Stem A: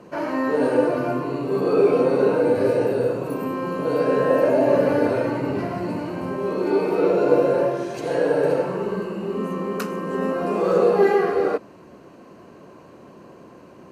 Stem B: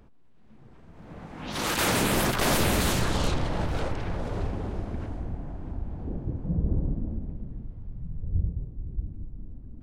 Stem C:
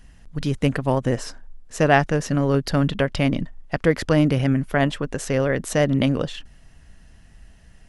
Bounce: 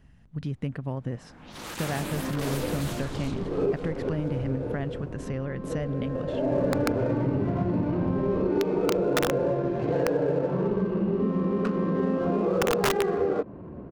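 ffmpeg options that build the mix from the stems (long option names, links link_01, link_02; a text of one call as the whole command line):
ffmpeg -i stem1.wav -i stem2.wav -i stem3.wav -filter_complex "[0:a]aemphasis=mode=reproduction:type=riaa,adynamicsmooth=sensitivity=5.5:basefreq=1500,adelay=1850,volume=-0.5dB[link_01];[1:a]volume=-10.5dB[link_02];[2:a]highpass=84,bass=frequency=250:gain=9,treble=frequency=4000:gain=-9,acompressor=threshold=-23dB:ratio=2.5,volume=-8dB,asplit=2[link_03][link_04];[link_04]apad=whole_len=695065[link_05];[link_01][link_05]sidechaincompress=threshold=-50dB:ratio=4:attack=7.4:release=290[link_06];[link_06][link_02]amix=inputs=2:normalize=0,aeval=exprs='(mod(2.11*val(0)+1,2)-1)/2.11':channel_layout=same,acompressor=threshold=-22dB:ratio=6,volume=0dB[link_07];[link_03][link_07]amix=inputs=2:normalize=0" out.wav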